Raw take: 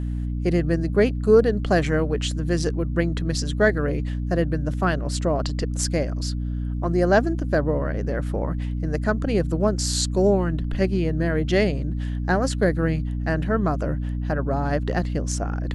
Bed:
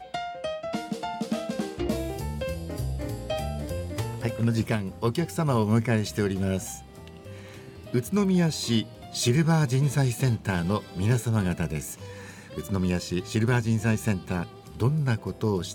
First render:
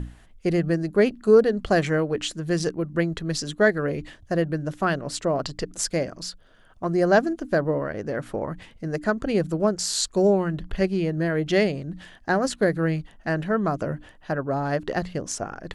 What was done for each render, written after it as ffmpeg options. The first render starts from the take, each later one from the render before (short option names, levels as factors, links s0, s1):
-af "bandreject=f=60:t=h:w=6,bandreject=f=120:t=h:w=6,bandreject=f=180:t=h:w=6,bandreject=f=240:t=h:w=6,bandreject=f=300:t=h:w=6"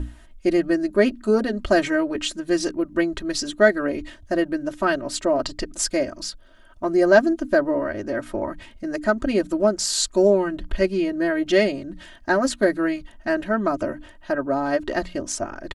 -af "aecho=1:1:3.2:0.94"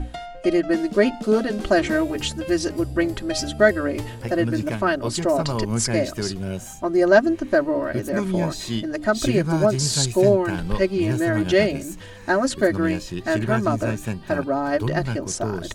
-filter_complex "[1:a]volume=0.794[s0];[0:a][s0]amix=inputs=2:normalize=0"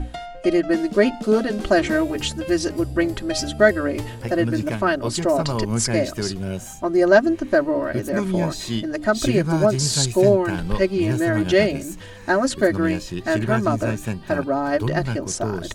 -af "volume=1.12,alimiter=limit=0.794:level=0:latency=1"